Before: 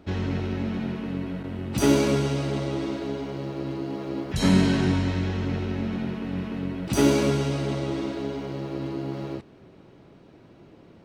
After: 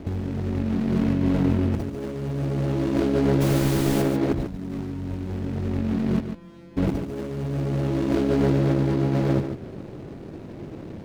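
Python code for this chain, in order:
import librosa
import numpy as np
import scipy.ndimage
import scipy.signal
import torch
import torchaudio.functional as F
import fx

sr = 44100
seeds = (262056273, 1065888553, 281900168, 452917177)

p1 = scipy.signal.medfilt(x, 41)
p2 = fx.low_shelf(p1, sr, hz=120.0, db=4.0)
p3 = fx.hum_notches(p2, sr, base_hz=60, count=3)
p4 = fx.over_compress(p3, sr, threshold_db=-33.0, ratio=-1.0)
p5 = fx.dmg_noise_colour(p4, sr, seeds[0], colour='pink', level_db=-39.0, at=(3.4, 4.01), fade=0.02)
p6 = fx.comb_fb(p5, sr, f0_hz=170.0, decay_s=0.75, harmonics='all', damping=0.0, mix_pct=100, at=(6.2, 6.77))
p7 = p6 + fx.echo_single(p6, sr, ms=144, db=-8.5, dry=0)
y = p7 * librosa.db_to_amplitude(7.5)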